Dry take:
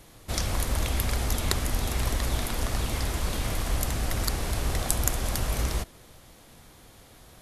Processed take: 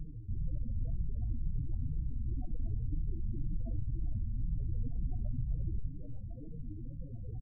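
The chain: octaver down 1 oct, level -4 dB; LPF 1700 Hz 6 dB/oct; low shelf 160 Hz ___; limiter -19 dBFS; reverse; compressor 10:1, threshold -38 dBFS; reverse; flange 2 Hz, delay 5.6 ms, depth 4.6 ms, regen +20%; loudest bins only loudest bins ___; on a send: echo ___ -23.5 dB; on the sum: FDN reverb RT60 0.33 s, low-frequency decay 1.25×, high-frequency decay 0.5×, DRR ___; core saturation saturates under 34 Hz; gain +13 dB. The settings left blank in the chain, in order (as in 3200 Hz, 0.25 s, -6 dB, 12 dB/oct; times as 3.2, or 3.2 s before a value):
+4.5 dB, 8, 0.342 s, 12.5 dB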